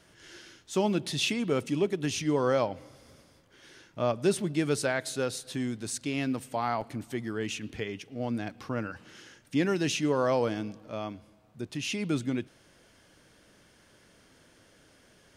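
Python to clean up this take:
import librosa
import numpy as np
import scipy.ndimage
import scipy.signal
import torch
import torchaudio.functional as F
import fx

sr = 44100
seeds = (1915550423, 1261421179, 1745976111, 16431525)

y = fx.fix_interpolate(x, sr, at_s=(6.81,), length_ms=5.2)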